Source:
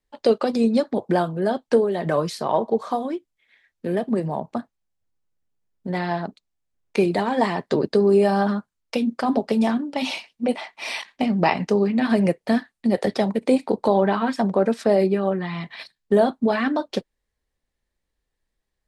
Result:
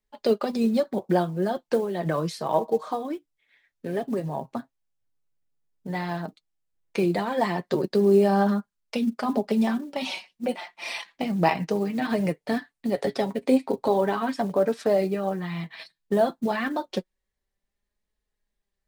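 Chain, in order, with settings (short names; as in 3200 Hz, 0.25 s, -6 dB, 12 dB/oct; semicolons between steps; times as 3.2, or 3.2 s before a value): short-mantissa float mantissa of 4-bit; flange 0.11 Hz, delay 4.7 ms, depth 2.8 ms, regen +41%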